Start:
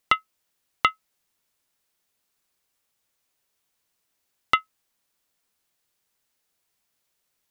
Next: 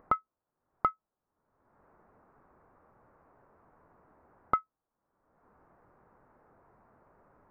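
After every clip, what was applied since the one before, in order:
inverse Chebyshev low-pass filter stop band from 3,200 Hz, stop band 50 dB
upward compression, threshold −40 dBFS
level −2 dB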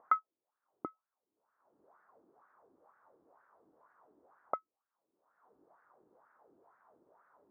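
LFO wah 2.1 Hz 310–1,600 Hz, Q 3.4
level +4.5 dB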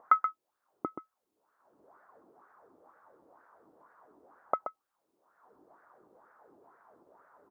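single-tap delay 128 ms −8.5 dB
level +5.5 dB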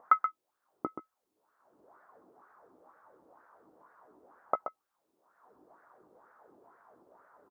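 double-tracking delay 16 ms −12 dB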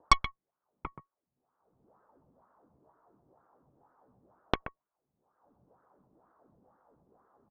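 single-sideband voice off tune −180 Hz 190–2,300 Hz
harmonic generator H 4 −9 dB, 7 −13 dB, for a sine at −10 dBFS
one half of a high-frequency compander decoder only

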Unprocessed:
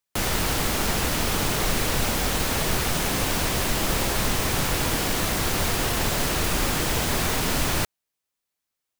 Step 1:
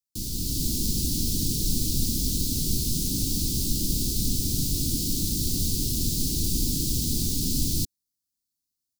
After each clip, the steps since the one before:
automatic gain control gain up to 6 dB
Chebyshev band-stop filter 290–4,400 Hz, order 3
level −5 dB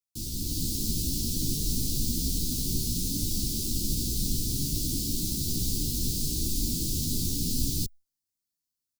barber-pole flanger 11.8 ms +2.6 Hz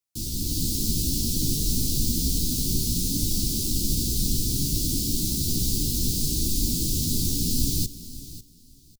repeating echo 547 ms, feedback 21%, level −15.5 dB
level +4 dB

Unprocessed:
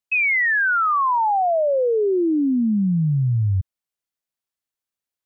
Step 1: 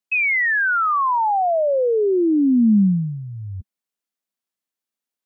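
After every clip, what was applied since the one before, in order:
low shelf with overshoot 160 Hz −7 dB, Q 3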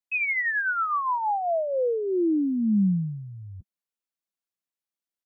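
comb filter 6 ms, depth 32%
level −7.5 dB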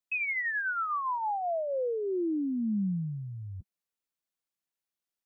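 downward compressor 2.5 to 1, threshold −32 dBFS, peak gain reduction 8.5 dB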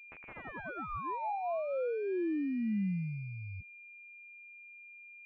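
switching amplifier with a slow clock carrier 2,400 Hz
level −3 dB

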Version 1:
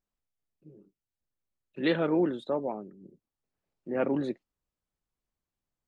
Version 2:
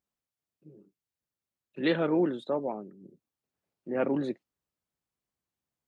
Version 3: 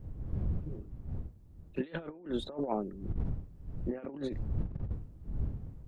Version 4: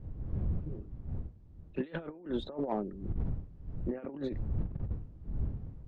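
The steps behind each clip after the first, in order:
high-pass filter 83 Hz
wind on the microphone 89 Hz −40 dBFS; compressor whose output falls as the input rises −35 dBFS, ratio −0.5; level +1.5 dB
in parallel at −7 dB: hard clipping −28.5 dBFS, distortion −14 dB; on the sum: high-frequency loss of the air 130 metres; level −2.5 dB

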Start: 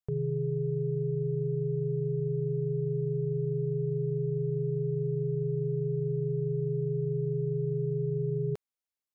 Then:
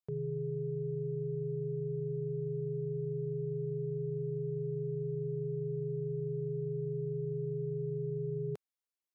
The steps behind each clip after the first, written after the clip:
high-pass filter 130 Hz
level −4.5 dB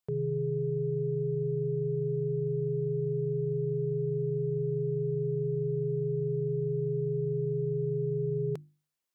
mains-hum notches 50/100/150/200/250/300/350 Hz
level +6 dB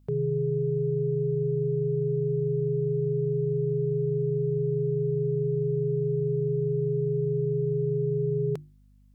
mains hum 50 Hz, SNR 31 dB
level +4 dB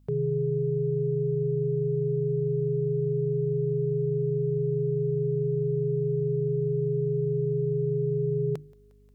feedback echo with a high-pass in the loop 178 ms, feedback 82%, high-pass 430 Hz, level −23.5 dB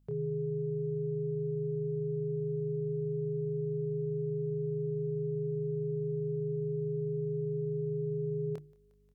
double-tracking delay 26 ms −7 dB
level −8.5 dB

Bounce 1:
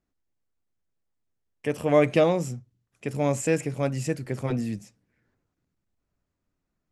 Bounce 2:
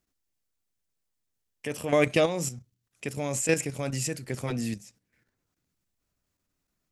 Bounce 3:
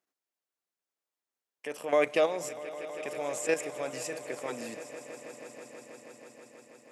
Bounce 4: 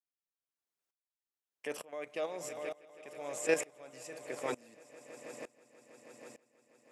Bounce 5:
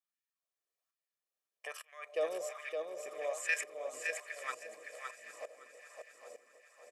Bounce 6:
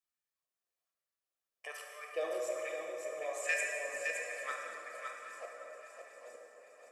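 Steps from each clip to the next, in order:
high-shelf EQ 2,400 Hz +11.5 dB; output level in coarse steps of 10 dB
high-pass filter 510 Hz 12 dB per octave; high-shelf EQ 2,000 Hz −10 dB; on a send: echo that builds up and dies away 161 ms, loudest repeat 5, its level −18 dB; on the sum: level +1.5 dB
tremolo with a ramp in dB swelling 1.1 Hz, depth 24 dB; level +2 dB
comb filter 1.7 ms, depth 59%; auto-filter high-pass sine 1.2 Hz 310–1,900 Hz; on a send: repeating echo 564 ms, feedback 17%, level −5 dB; on the sum: level −4 dB
reverb reduction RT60 1.6 s; dense smooth reverb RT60 3.7 s, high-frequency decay 0.55×, DRR −1.5 dB; level −1.5 dB

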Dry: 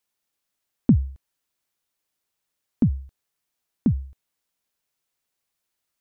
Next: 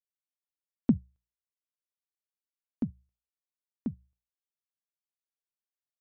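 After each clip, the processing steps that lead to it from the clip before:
low-shelf EQ 420 Hz −6.5 dB
mains-hum notches 60/120/180 Hz
expander for the loud parts 2.5 to 1, over −34 dBFS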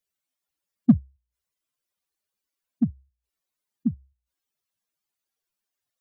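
expanding power law on the bin magnitudes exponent 2.4
in parallel at −9 dB: hard clipping −24.5 dBFS, distortion −6 dB
on the sum: level +7 dB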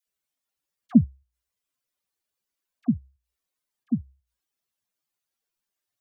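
all-pass dispersion lows, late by 70 ms, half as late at 830 Hz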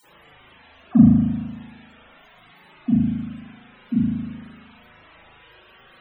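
bit-depth reduction 8 bits, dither triangular
spring reverb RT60 1.2 s, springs 38 ms, chirp 65 ms, DRR −9 dB
spectral peaks only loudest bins 64
level −2 dB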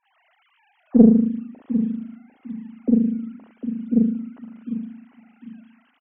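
three sine waves on the formant tracks
repeating echo 751 ms, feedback 26%, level −10.5 dB
highs frequency-modulated by the lows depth 0.5 ms
level +1 dB

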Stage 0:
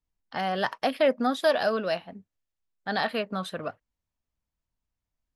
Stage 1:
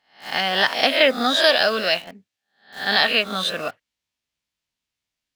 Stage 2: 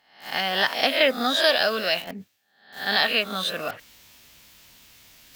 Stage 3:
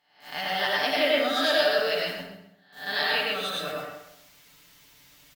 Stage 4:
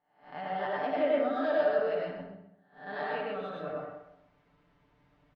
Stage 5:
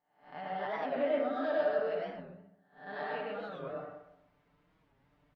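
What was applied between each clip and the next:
peak hold with a rise ahead of every peak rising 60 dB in 0.45 s; meter weighting curve D; in parallel at −7 dB: bit-depth reduction 6 bits, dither none
reversed playback; upward compression, threshold −23 dBFS; reversed playback; parametric band 15,000 Hz +13 dB 0.31 octaves; level −3.5 dB
comb filter 6.8 ms, depth 68%; repeating echo 131 ms, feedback 28%, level −13 dB; dense smooth reverb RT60 0.75 s, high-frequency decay 0.65×, pre-delay 80 ms, DRR −3 dB; level −9 dB
low-pass filter 1,000 Hz 12 dB per octave; level −2 dB
wow of a warped record 45 rpm, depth 160 cents; level −3.5 dB

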